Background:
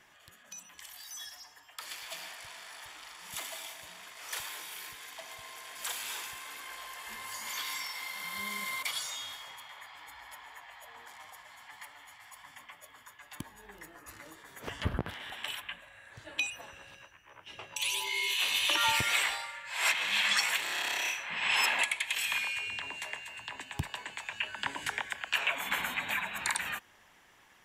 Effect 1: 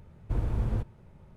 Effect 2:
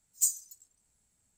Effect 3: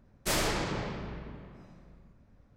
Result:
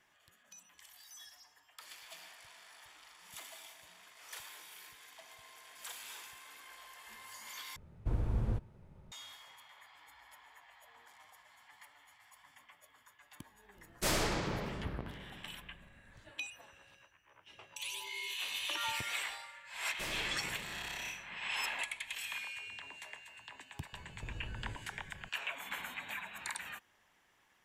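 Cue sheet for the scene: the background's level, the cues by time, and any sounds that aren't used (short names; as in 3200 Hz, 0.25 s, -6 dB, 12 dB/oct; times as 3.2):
background -9.5 dB
7.76 replace with 1 -4.5 dB
13.76 add 3 -3 dB
19.73 add 3 -14.5 dB
23.93 add 1 -1.5 dB + compressor, threshold -40 dBFS
not used: 2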